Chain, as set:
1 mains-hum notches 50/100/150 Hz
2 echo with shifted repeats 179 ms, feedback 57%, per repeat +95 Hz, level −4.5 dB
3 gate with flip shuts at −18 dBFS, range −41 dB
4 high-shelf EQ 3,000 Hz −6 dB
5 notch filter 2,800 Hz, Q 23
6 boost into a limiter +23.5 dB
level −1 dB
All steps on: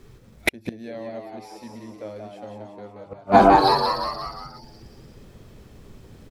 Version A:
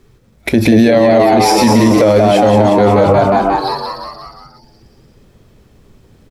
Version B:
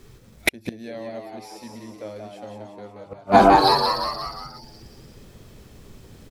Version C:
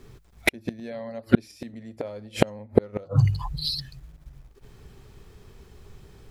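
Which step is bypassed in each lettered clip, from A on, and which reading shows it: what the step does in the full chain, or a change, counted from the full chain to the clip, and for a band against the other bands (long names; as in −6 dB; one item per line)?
3, change in momentary loudness spread −11 LU
4, 4 kHz band +4.0 dB
2, change in momentary loudness spread −9 LU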